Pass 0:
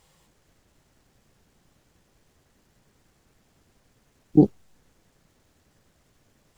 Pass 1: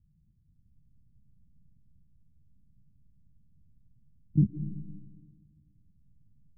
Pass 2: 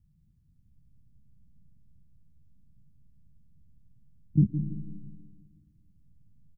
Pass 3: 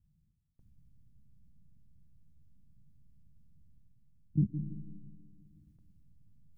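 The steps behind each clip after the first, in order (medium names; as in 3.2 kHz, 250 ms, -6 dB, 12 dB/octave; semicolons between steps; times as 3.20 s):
inverse Chebyshev low-pass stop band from 620 Hz, stop band 60 dB; algorithmic reverb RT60 1.6 s, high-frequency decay 0.3×, pre-delay 80 ms, DRR 11.5 dB; trim +1 dB
feedback delay 164 ms, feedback 50%, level -13 dB; trim +1.5 dB
gate with hold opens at -54 dBFS; reverse; upward compressor, threshold -45 dBFS; reverse; trim -6.5 dB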